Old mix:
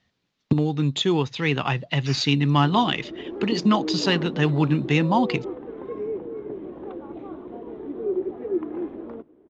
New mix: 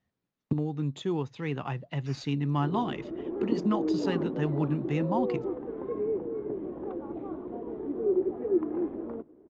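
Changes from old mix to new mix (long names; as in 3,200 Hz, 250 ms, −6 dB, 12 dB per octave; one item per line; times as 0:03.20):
speech −8.0 dB
master: add parametric band 3,900 Hz −11.5 dB 2.1 octaves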